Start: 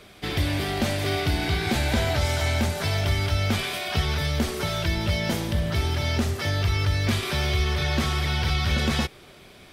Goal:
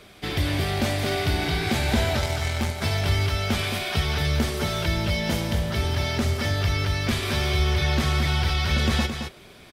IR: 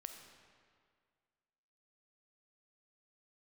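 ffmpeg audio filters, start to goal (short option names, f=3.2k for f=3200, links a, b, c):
-filter_complex "[0:a]asettb=1/sr,asplit=3[a][b][c];[a]atrim=end=2.184[d];[b]atrim=start=2.18:end=2.82,asetpts=PTS-STARTPTS,afade=t=in:d=0.004:c=qsin,afade=t=out:st=0.636:d=0.004:c=qsin,aeval=exprs='0.211*(cos(1*acos(clip(val(0)/0.211,-1,1)))-cos(1*PI/2))+0.0422*(cos(3*acos(clip(val(0)/0.211,-1,1)))-cos(3*PI/2))':c=same[e];[c]atrim=start=2.816[f];[d][e]acrossfade=d=0.004:c1=hsin:c2=qsin[g];[g][f]acrossfade=d=0.004:c1=qsin:c2=hsin,asplit=2[h][i];[i]aecho=0:1:219:0.447[j];[h][j]amix=inputs=2:normalize=0"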